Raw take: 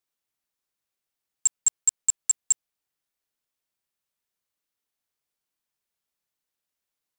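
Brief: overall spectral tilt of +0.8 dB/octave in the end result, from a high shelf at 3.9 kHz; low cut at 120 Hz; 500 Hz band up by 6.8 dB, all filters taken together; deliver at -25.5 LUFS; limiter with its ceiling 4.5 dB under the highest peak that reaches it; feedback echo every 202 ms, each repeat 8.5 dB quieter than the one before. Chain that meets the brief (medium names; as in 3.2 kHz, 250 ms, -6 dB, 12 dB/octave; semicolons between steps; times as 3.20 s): high-pass 120 Hz; peaking EQ 500 Hz +8.5 dB; treble shelf 3.9 kHz -3.5 dB; peak limiter -19.5 dBFS; feedback delay 202 ms, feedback 38%, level -8.5 dB; trim +4.5 dB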